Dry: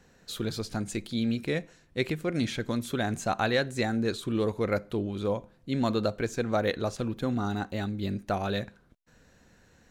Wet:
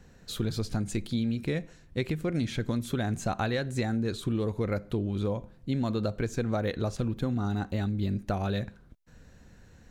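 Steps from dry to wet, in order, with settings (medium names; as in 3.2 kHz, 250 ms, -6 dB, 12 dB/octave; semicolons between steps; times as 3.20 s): bass shelf 180 Hz +11 dB; compression, threshold -25 dBFS, peak gain reduction 7 dB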